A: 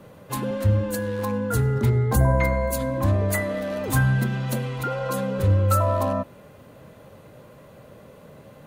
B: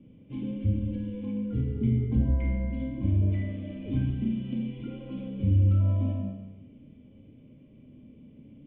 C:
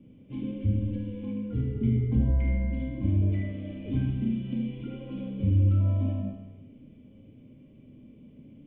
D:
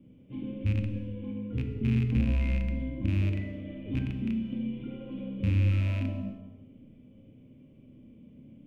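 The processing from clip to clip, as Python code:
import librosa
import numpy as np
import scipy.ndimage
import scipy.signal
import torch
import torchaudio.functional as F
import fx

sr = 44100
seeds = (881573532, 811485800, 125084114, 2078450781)

y1 = fx.formant_cascade(x, sr, vowel='i')
y1 = fx.low_shelf(y1, sr, hz=97.0, db=11.5)
y1 = fx.rev_schroeder(y1, sr, rt60_s=1.0, comb_ms=28, drr_db=0.5)
y2 = y1 + 10.0 ** (-9.5 / 20.0) * np.pad(y1, (int(75 * sr / 1000.0), 0))[:len(y1)]
y3 = fx.rattle_buzz(y2, sr, strikes_db=-23.0, level_db=-28.0)
y3 = fx.rev_gated(y3, sr, seeds[0], gate_ms=370, shape='falling', drr_db=7.0)
y3 = F.gain(torch.from_numpy(y3), -3.0).numpy()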